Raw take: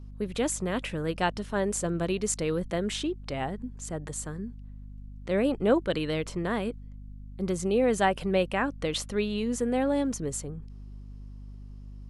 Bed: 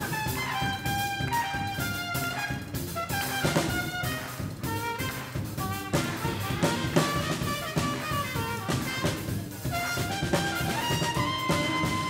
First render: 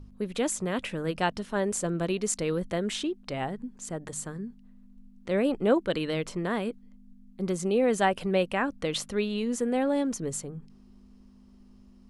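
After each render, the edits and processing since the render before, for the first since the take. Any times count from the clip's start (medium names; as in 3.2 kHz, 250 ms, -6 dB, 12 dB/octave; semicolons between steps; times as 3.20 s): de-hum 50 Hz, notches 3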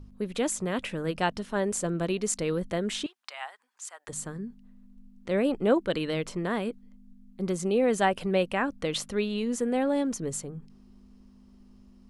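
3.06–4.08 s: high-pass 910 Hz 24 dB/octave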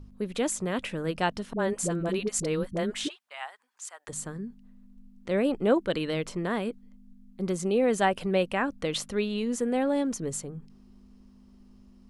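1.53–3.31 s: phase dispersion highs, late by 60 ms, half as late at 450 Hz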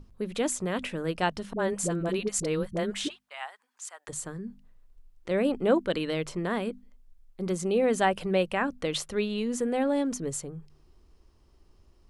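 hum notches 50/100/150/200/250 Hz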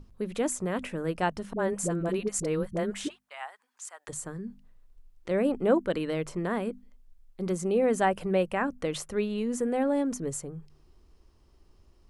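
dynamic bell 3.7 kHz, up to -8 dB, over -51 dBFS, Q 1.1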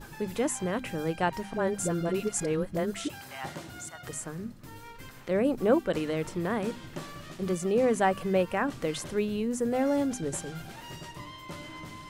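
add bed -15.5 dB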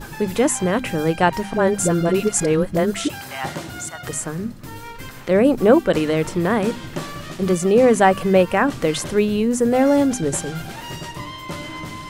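trim +11 dB; peak limiter -3 dBFS, peak gain reduction 2 dB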